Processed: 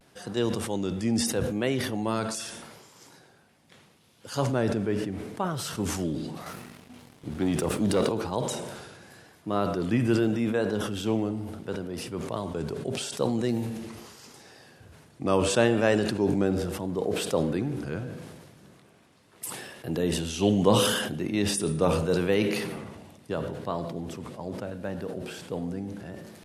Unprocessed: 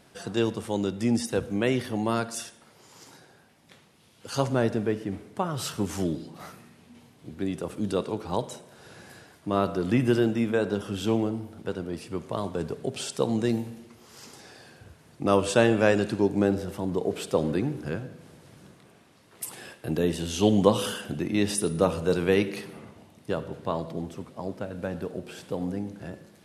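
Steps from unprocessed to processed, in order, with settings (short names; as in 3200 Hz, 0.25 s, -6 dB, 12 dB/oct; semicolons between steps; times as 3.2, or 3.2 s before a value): vibrato 0.77 Hz 64 cents; 6.46–8.09 sample leveller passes 2; sustainer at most 38 dB/s; gain -2.5 dB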